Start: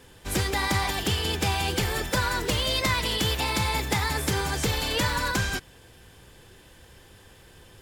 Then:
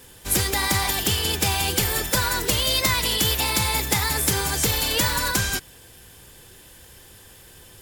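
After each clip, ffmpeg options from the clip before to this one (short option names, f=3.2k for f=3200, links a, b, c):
-af "aemphasis=mode=production:type=50kf,volume=1dB"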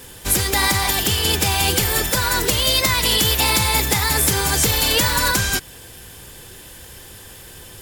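-af "alimiter=limit=-13dB:level=0:latency=1:release=387,volume=7.5dB"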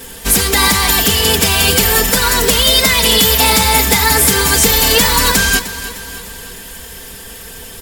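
-af "aecho=1:1:4.4:0.73,asoftclip=type=tanh:threshold=-7.5dB,aecho=1:1:304|608|912|1216|1520:0.2|0.108|0.0582|0.0314|0.017,volume=6dB"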